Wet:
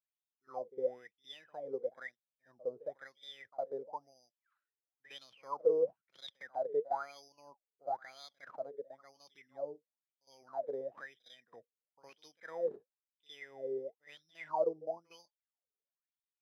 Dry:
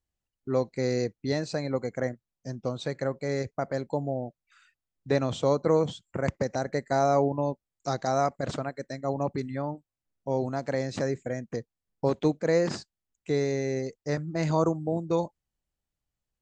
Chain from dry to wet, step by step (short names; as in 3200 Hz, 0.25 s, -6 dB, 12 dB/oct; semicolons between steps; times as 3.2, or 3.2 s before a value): careless resampling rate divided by 8×, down filtered, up hold; pre-echo 60 ms -18 dB; wah 1 Hz 420–3700 Hz, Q 20; gain +4.5 dB